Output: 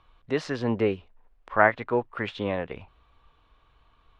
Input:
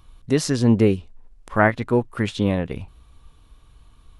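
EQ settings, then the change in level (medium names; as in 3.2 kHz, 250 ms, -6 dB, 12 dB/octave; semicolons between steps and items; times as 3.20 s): distance through air 56 m; three-band isolator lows -13 dB, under 450 Hz, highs -14 dB, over 3.7 kHz; treble shelf 9.1 kHz -11 dB; 0.0 dB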